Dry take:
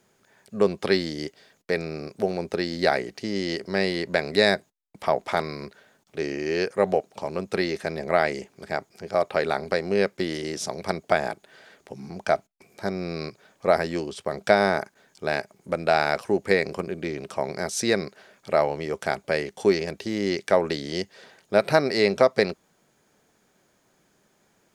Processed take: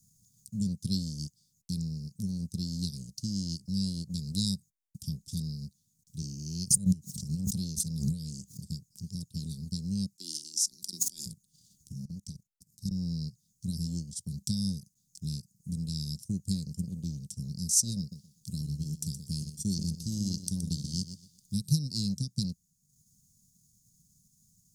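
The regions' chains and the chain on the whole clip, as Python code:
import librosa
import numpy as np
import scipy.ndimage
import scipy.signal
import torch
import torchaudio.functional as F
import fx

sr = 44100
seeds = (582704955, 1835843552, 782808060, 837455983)

y = fx.chain(x, sr, fx.highpass(hz=68.0, slope=24),
    fx.pre_swell(db_per_s=68.0), at=(6.22, 8.67))
y = fx.chain(y, sr, fx.highpass(hz=350.0, slope=24),
    fx.sustainer(db_per_s=23.0), at=(10.16, 11.26))
y = fx.chain(y, sr, fx.peak_eq(hz=360.0, db=2.5, octaves=0.22),
    fx.level_steps(step_db=13), at=(12.05, 12.91))
y = fx.chain(y, sr, fx.high_shelf(hz=8700.0, db=3.5),
    fx.echo_feedback(ms=122, feedback_pct=29, wet_db=-7.5), at=(17.99, 21.6))
y = scipy.signal.sosfilt(scipy.signal.cheby2(4, 60, [460.0, 2200.0], 'bandstop', fs=sr, output='sos'), y)
y = fx.transient(y, sr, attack_db=3, sustain_db=-8)
y = y * 10.0 ** (6.0 / 20.0)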